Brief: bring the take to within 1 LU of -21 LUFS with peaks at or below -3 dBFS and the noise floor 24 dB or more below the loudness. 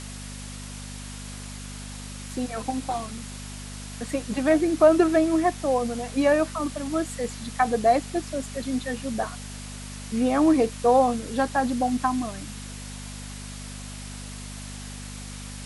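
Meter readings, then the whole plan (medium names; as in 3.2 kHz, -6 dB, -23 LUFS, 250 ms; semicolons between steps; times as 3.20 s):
hum 50 Hz; highest harmonic 250 Hz; hum level -36 dBFS; noise floor -38 dBFS; noise floor target -49 dBFS; loudness -24.5 LUFS; peak level -7.0 dBFS; loudness target -21.0 LUFS
-> de-hum 50 Hz, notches 5; noise print and reduce 11 dB; trim +3.5 dB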